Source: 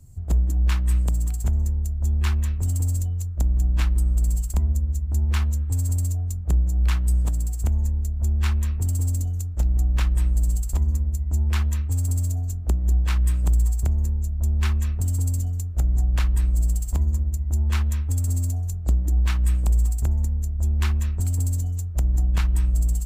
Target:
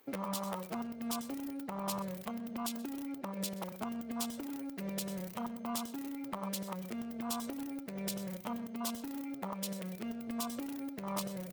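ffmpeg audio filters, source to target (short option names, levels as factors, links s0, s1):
-filter_complex "[0:a]afwtdn=0.0708,highpass=450,aemphasis=mode=production:type=75fm,asplit=2[s0][s1];[s1]acompressor=threshold=0.00224:ratio=10,volume=1.26[s2];[s0][s2]amix=inputs=2:normalize=0,alimiter=level_in=1.88:limit=0.0631:level=0:latency=1:release=467,volume=0.531,asetrate=70004,aresample=44100,atempo=0.629961,asoftclip=type=tanh:threshold=0.0112,asplit=2[s3][s4];[s4]aecho=0:1:252:0.1[s5];[s3][s5]amix=inputs=2:normalize=0,asetrate=88200,aresample=44100,volume=4.73" -ar 48000 -c:a libopus -b:a 256k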